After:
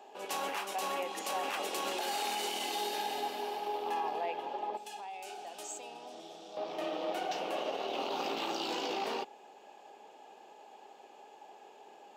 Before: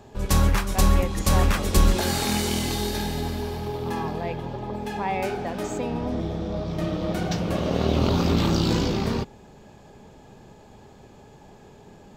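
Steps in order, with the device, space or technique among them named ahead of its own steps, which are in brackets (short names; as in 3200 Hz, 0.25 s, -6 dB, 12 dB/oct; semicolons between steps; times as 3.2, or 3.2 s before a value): laptop speaker (HPF 340 Hz 24 dB/oct; bell 790 Hz +10 dB 0.49 oct; bell 2800 Hz +9 dB 0.42 oct; limiter -18.5 dBFS, peak gain reduction 11 dB); 4.77–6.57 graphic EQ 250/500/1000/2000/8000 Hz -10/-9/-8/-10/+8 dB; gain -7.5 dB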